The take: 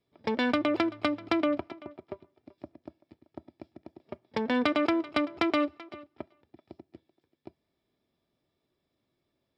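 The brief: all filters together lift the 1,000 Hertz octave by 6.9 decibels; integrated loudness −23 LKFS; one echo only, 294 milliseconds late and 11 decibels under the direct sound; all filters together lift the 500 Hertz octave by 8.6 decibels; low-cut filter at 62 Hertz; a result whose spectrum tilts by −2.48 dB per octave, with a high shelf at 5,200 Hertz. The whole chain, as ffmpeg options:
ffmpeg -i in.wav -af "highpass=62,equalizer=frequency=500:width_type=o:gain=9,equalizer=frequency=1000:width_type=o:gain=6,highshelf=frequency=5200:gain=5.5,aecho=1:1:294:0.282,volume=0.5dB" out.wav

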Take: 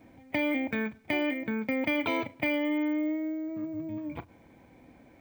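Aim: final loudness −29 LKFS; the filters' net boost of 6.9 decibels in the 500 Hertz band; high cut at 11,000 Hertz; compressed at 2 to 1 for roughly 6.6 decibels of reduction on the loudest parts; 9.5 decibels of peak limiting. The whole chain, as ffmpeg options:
ffmpeg -i in.wav -af "lowpass=11000,equalizer=frequency=500:width_type=o:gain=8.5,acompressor=threshold=-33dB:ratio=2,volume=6.5dB,alimiter=limit=-20dB:level=0:latency=1" out.wav

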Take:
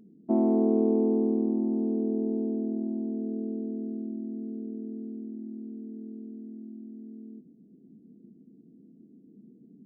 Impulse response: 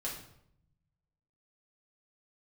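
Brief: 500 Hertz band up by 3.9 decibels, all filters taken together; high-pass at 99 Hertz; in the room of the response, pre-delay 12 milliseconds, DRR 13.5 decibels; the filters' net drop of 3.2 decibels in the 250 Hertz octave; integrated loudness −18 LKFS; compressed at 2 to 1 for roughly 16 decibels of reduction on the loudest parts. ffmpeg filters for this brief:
-filter_complex "[0:a]highpass=99,equalizer=frequency=250:width_type=o:gain=-6,equalizer=frequency=500:width_type=o:gain=7.5,acompressor=threshold=-50dB:ratio=2,asplit=2[link_01][link_02];[1:a]atrim=start_sample=2205,adelay=12[link_03];[link_02][link_03]afir=irnorm=-1:irlink=0,volume=-15dB[link_04];[link_01][link_04]amix=inputs=2:normalize=0,volume=26dB"

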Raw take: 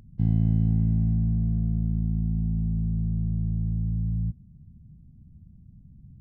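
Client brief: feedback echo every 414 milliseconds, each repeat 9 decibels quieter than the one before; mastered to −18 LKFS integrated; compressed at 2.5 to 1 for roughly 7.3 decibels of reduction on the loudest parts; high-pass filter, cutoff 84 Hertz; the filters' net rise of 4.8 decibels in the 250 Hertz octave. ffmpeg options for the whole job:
ffmpeg -i in.wav -af "highpass=84,equalizer=frequency=250:width_type=o:gain=8,acompressor=threshold=-27dB:ratio=2.5,aecho=1:1:414|828|1242|1656:0.355|0.124|0.0435|0.0152,volume=11.5dB" out.wav

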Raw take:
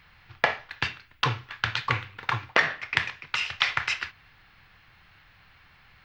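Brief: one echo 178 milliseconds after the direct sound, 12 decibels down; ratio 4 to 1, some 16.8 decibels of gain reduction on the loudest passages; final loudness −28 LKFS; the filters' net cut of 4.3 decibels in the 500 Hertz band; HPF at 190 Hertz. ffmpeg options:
ffmpeg -i in.wav -af "highpass=190,equalizer=frequency=500:width_type=o:gain=-5.5,acompressor=threshold=-41dB:ratio=4,aecho=1:1:178:0.251,volume=15dB" out.wav

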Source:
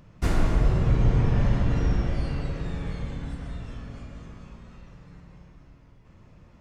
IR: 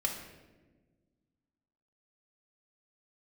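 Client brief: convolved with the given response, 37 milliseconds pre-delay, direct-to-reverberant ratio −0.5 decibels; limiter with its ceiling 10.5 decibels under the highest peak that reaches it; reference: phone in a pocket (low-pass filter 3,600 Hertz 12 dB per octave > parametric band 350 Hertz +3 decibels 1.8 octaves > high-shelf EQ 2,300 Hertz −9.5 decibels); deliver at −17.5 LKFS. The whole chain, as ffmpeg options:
-filter_complex "[0:a]alimiter=limit=-20dB:level=0:latency=1,asplit=2[link_01][link_02];[1:a]atrim=start_sample=2205,adelay=37[link_03];[link_02][link_03]afir=irnorm=-1:irlink=0,volume=-4dB[link_04];[link_01][link_04]amix=inputs=2:normalize=0,lowpass=3600,equalizer=frequency=350:width_type=o:width=1.8:gain=3,highshelf=frequency=2300:gain=-9.5,volume=9.5dB"

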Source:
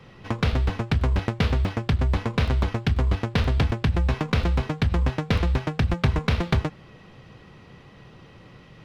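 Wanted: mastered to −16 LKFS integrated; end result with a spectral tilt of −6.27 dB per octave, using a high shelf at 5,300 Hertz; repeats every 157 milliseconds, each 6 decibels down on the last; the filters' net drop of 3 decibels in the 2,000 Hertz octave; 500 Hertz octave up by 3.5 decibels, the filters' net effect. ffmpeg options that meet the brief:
ffmpeg -i in.wav -af "equalizer=frequency=500:width_type=o:gain=4.5,equalizer=frequency=2000:width_type=o:gain=-5.5,highshelf=frequency=5300:gain=8.5,aecho=1:1:157|314|471|628|785|942:0.501|0.251|0.125|0.0626|0.0313|0.0157,volume=6.5dB" out.wav

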